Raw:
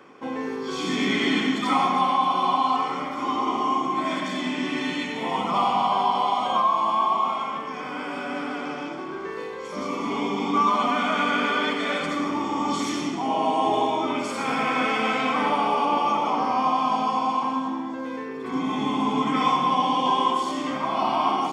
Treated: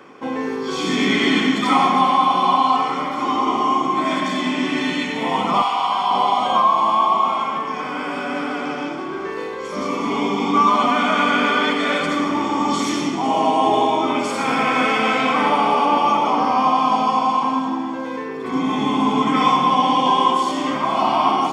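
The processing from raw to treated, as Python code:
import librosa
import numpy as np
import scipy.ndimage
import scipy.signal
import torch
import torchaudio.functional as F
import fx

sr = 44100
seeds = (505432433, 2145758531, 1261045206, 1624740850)

y = fx.highpass(x, sr, hz=960.0, slope=12, at=(5.62, 6.11))
y = y + 10.0 ** (-14.5 / 20.0) * np.pad(y, (int(501 * sr / 1000.0), 0))[:len(y)]
y = y * 10.0 ** (5.5 / 20.0)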